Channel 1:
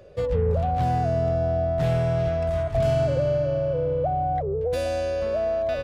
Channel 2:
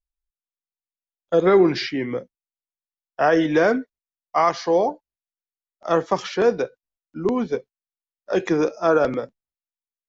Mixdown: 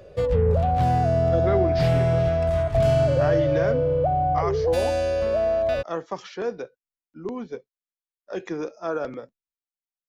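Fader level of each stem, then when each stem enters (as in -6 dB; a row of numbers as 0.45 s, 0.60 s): +2.5 dB, -10.0 dB; 0.00 s, 0.00 s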